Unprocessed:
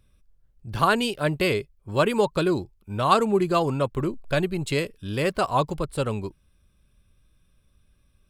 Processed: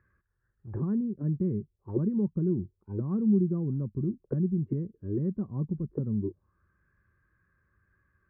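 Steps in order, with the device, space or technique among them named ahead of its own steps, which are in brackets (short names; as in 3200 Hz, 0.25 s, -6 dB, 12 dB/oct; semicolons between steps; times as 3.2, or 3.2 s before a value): envelope filter bass rig (envelope low-pass 210–1700 Hz down, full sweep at -23.5 dBFS; speaker cabinet 66–2000 Hz, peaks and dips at 95 Hz +6 dB, 250 Hz -4 dB, 360 Hz +6 dB, 670 Hz -9 dB, 1100 Hz +4 dB, 1800 Hz +9 dB); gain -6.5 dB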